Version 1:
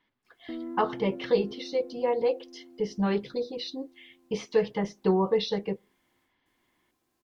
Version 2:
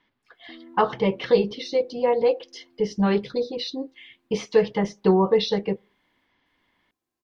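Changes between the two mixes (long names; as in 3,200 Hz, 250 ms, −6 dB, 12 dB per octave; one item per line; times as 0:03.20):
speech +5.5 dB
background −9.0 dB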